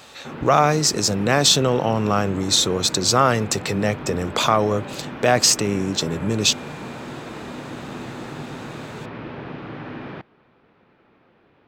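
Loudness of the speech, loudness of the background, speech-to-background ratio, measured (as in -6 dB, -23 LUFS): -19.0 LUFS, -34.5 LUFS, 15.5 dB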